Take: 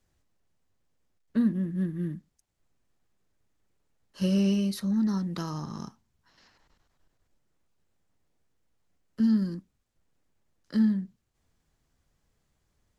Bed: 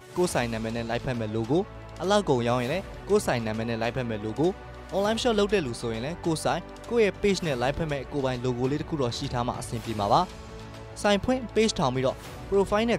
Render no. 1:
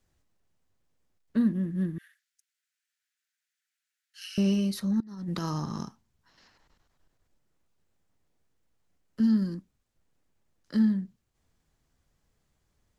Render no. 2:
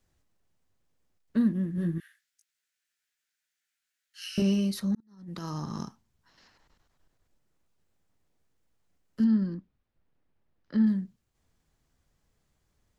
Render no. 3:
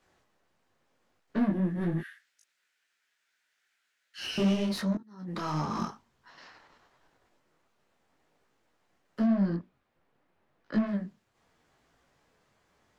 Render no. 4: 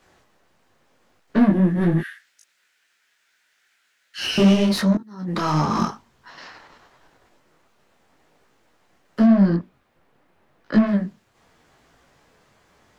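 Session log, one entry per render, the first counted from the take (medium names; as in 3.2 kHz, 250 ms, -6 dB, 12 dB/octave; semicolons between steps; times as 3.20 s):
1.98–4.38 s: steep high-pass 1.4 kHz 72 dB/octave; 5.00–5.83 s: compressor with a negative ratio -33 dBFS, ratio -0.5
1.76–4.42 s: doubling 18 ms -2.5 dB; 4.95–5.84 s: fade in; 9.24–10.87 s: distance through air 230 m
overdrive pedal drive 25 dB, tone 1.5 kHz, clips at -15.5 dBFS; detune thickener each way 29 cents
trim +11 dB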